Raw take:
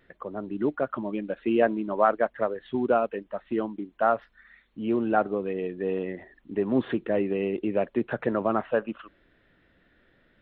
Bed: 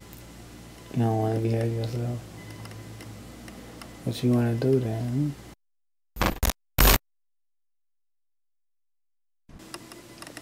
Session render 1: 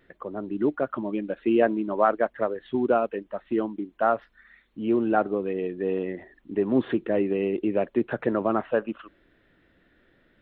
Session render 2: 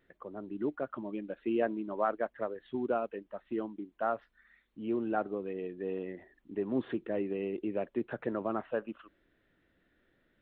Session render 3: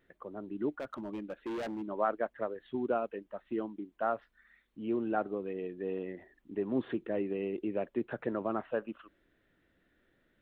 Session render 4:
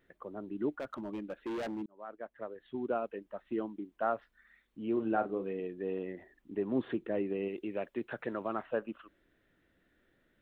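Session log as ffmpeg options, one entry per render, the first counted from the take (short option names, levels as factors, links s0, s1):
-af "equalizer=f=330:t=o:w=0.69:g=3.5"
-af "volume=0.335"
-filter_complex "[0:a]asplit=3[s0][s1][s2];[s0]afade=t=out:st=0.73:d=0.02[s3];[s1]asoftclip=type=hard:threshold=0.0188,afade=t=in:st=0.73:d=0.02,afade=t=out:st=1.81:d=0.02[s4];[s2]afade=t=in:st=1.81:d=0.02[s5];[s3][s4][s5]amix=inputs=3:normalize=0"
-filter_complex "[0:a]asettb=1/sr,asplit=3[s0][s1][s2];[s0]atrim=end=4.934[s3];[s1]atrim=start=4.93:end=5.6,asetpts=PTS-STARTPTS,afade=t=in:d=0.004:c=qsin,afade=t=out:st=0.666:d=0.004:c=qsin,asplit=2[s4][s5];[s5]adelay=36,volume=0.398[s6];[s4][s6]amix=inputs=2:normalize=0,atrim=end_sample=29547[s7];[s2]atrim=start=5.596[s8];[s3][s7]acrossfade=d=0.004:c1=hsin:c2=qsin[s9];[s9][s8]acrossfade=d=0.004:c1=qsin:c2=hsin,asettb=1/sr,asplit=3[s10][s11][s12];[s10]atrim=end=7.484[s13];[s11]atrim=start=7.48:end=8.63,asetpts=PTS-STARTPTS,afade=t=in:d=0.004:c=qsin,afade=t=out:st=1.146:d=0.004:c=qsin,tiltshelf=f=1100:g=-4.5[s14];[s12]atrim=start=8.626[s15];[s13][s14]acrossfade=d=0.004:c1=hsin:c2=qsin[s16];[s16][s15]acrossfade=d=0.004:c1=qsin:c2=hsin,asplit=2[s17][s18];[s17]atrim=end=1.86,asetpts=PTS-STARTPTS,afade=t=out:st=1.856:d=0.004:c=hsin[s19];[s18]atrim=start=1.86,asetpts=PTS-STARTPTS,afade=t=in:d=1.87:c=qsin[s20];[s19][s20]concat=n=2:v=0:a=1"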